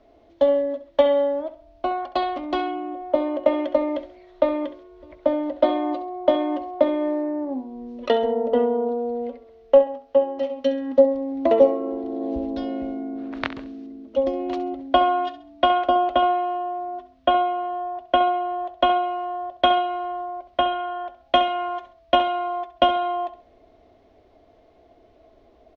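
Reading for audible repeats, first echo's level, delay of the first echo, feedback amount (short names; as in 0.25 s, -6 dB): 3, -13.5 dB, 67 ms, 33%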